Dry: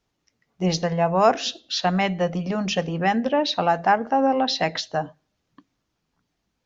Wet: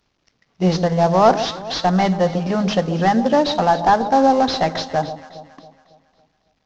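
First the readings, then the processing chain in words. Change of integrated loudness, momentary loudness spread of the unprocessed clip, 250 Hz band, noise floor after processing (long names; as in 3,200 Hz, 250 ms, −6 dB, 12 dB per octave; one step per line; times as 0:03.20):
+5.0 dB, 8 LU, +6.0 dB, −68 dBFS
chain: variable-slope delta modulation 32 kbit/s
dynamic equaliser 2,500 Hz, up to −7 dB, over −44 dBFS, Q 1.7
on a send: delay that swaps between a low-pass and a high-pass 138 ms, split 960 Hz, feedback 66%, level −11 dB
on the sum: level +6 dB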